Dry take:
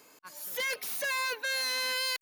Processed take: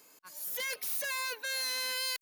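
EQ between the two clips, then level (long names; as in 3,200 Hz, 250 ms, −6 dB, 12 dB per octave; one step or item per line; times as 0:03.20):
high-shelf EQ 5,300 Hz +8 dB
−5.5 dB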